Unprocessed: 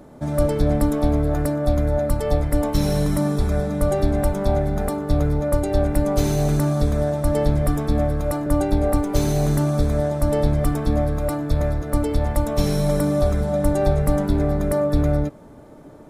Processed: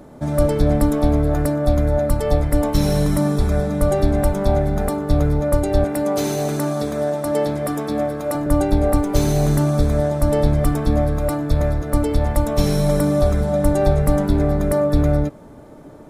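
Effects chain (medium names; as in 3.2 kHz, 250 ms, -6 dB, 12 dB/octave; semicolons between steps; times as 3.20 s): 5.84–8.35 s: high-pass 230 Hz 12 dB/octave; trim +2.5 dB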